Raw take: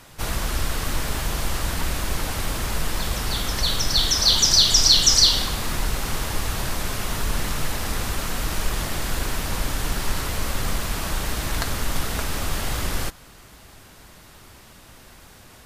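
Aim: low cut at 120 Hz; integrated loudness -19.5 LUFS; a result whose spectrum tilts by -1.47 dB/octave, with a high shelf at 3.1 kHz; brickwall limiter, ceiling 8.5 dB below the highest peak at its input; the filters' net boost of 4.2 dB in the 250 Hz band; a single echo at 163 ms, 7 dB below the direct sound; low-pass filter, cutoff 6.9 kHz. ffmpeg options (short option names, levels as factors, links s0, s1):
-af "highpass=120,lowpass=6900,equalizer=f=250:t=o:g=6,highshelf=f=3100:g=7.5,alimiter=limit=0.447:level=0:latency=1,aecho=1:1:163:0.447,volume=1.12"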